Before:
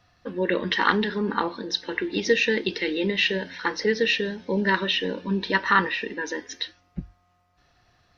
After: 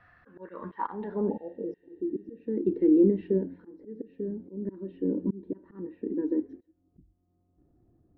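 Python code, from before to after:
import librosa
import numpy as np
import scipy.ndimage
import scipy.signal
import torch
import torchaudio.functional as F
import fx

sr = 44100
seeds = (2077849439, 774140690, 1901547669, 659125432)

y = fx.auto_swell(x, sr, attack_ms=522.0)
y = fx.spec_repair(y, sr, seeds[0], start_s=1.32, length_s=0.97, low_hz=900.0, high_hz=4500.0, source='after')
y = fx.filter_sweep_lowpass(y, sr, from_hz=1700.0, to_hz=320.0, start_s=0.19, end_s=2.04, q=3.6)
y = y * librosa.db_to_amplitude(-1.0)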